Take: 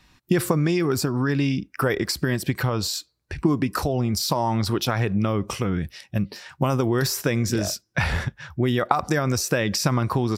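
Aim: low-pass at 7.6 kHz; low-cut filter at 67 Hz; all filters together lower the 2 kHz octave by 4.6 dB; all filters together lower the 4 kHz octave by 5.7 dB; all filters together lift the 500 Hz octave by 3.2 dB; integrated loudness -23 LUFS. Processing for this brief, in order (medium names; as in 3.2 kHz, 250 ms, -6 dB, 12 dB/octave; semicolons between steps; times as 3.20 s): high-pass 67 Hz; low-pass 7.6 kHz; peaking EQ 500 Hz +4.5 dB; peaking EQ 2 kHz -5 dB; peaking EQ 4 kHz -6 dB; trim +0.5 dB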